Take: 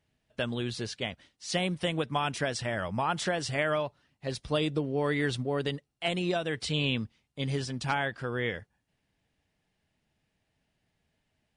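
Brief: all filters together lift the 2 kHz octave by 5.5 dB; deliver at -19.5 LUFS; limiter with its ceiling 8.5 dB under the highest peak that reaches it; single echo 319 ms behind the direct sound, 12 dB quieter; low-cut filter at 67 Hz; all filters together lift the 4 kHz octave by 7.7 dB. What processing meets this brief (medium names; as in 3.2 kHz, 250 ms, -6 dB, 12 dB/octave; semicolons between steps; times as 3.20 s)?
high-pass 67 Hz; peaking EQ 2 kHz +4.5 dB; peaking EQ 4 kHz +8.5 dB; peak limiter -18 dBFS; delay 319 ms -12 dB; trim +10.5 dB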